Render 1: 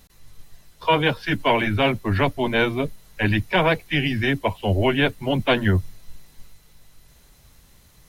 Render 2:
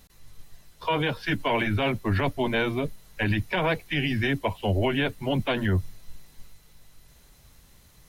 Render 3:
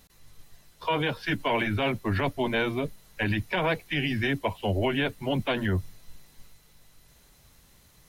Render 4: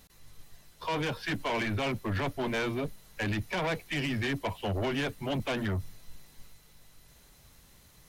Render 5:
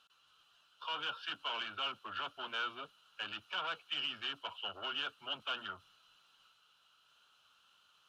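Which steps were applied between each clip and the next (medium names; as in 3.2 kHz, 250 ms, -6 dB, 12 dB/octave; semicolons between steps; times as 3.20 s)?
peak limiter -13.5 dBFS, peak gain reduction 8 dB; trim -2 dB
bass shelf 92 Hz -5 dB; trim -1 dB
saturation -26.5 dBFS, distortion -11 dB
two resonant band-passes 2 kHz, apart 1.1 oct; trim +4.5 dB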